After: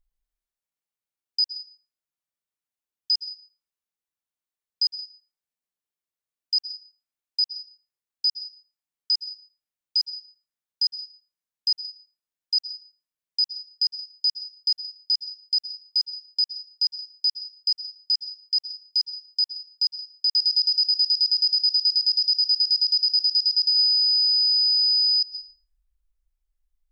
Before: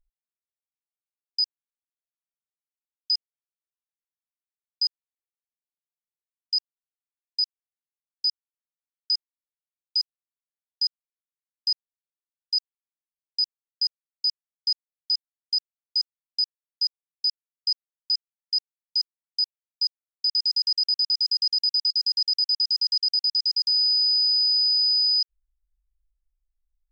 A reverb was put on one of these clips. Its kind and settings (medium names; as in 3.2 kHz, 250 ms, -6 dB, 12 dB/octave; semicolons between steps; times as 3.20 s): plate-style reverb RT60 0.77 s, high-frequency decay 0.45×, pre-delay 105 ms, DRR 5 dB; trim +1.5 dB